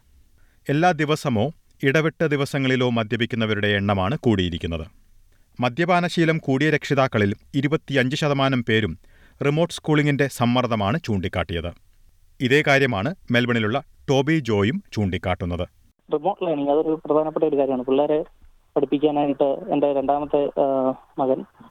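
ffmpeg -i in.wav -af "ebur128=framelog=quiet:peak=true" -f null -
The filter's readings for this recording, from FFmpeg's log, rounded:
Integrated loudness:
  I:         -21.7 LUFS
  Threshold: -32.2 LUFS
Loudness range:
  LRA:         2.0 LU
  Threshold: -42.1 LUFS
  LRA low:   -23.1 LUFS
  LRA high:  -21.1 LUFS
True peak:
  Peak:       -6.6 dBFS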